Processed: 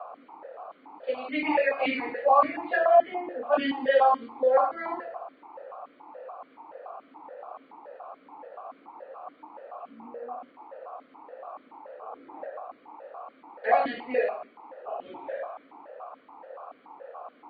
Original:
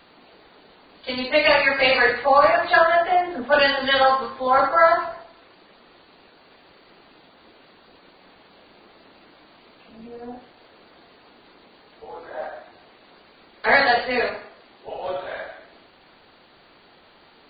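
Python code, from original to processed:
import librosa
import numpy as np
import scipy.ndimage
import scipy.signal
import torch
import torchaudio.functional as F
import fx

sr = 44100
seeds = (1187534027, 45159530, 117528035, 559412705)

y = fx.high_shelf(x, sr, hz=2000.0, db=-11.5)
y = fx.dmg_noise_band(y, sr, seeds[0], low_hz=470.0, high_hz=1300.0, level_db=-40.0)
y = fx.vowel_held(y, sr, hz=7.0)
y = y * librosa.db_to_amplitude(6.0)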